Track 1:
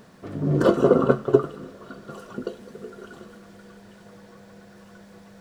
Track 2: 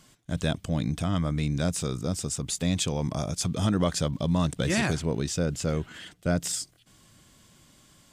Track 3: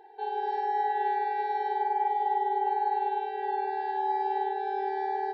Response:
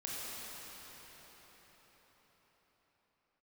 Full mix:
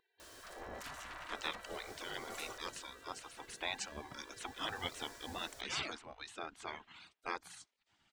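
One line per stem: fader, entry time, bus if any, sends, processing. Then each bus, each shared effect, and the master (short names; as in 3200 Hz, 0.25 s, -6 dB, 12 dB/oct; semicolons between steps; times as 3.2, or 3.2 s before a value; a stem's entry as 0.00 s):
2.48 s -3 dB -> 2.9 s -13.5 dB -> 4.3 s -13.5 dB -> 4.82 s -3.5 dB, 0.20 s, no send, tone controls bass +5 dB, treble +12 dB; compressor 6:1, threshold -21 dBFS, peak gain reduction 12.5 dB; soft clip -33 dBFS, distortion -3 dB
+2.5 dB, 1.00 s, no send, resonant low shelf 690 Hz -7.5 dB, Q 3; reverb removal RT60 1.6 s; Bessel low-pass 2700 Hz, order 2
-9.5 dB, 0.00 s, no send, HPF 1300 Hz 12 dB/oct; vibrato 12 Hz 34 cents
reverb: off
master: spectral gate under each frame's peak -15 dB weak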